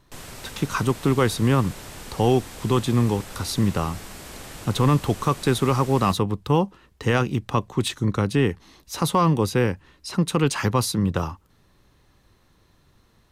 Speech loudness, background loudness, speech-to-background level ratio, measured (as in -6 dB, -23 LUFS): -23.0 LUFS, -39.0 LUFS, 16.0 dB